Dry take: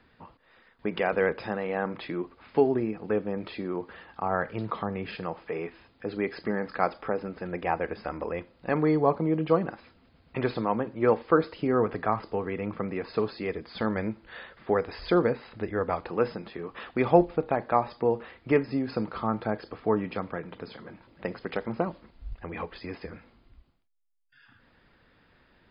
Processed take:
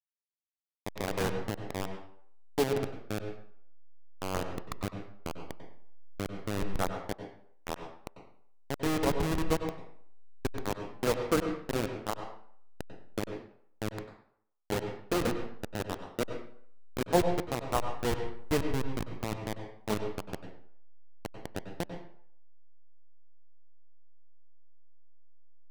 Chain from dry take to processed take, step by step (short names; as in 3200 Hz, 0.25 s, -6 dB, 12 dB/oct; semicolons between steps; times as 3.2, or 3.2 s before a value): level-crossing sampler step -17.5 dBFS; wow and flutter 28 cents; on a send: reverb RT60 0.60 s, pre-delay 91 ms, DRR 6.5 dB; on the sum: gain -5.5 dB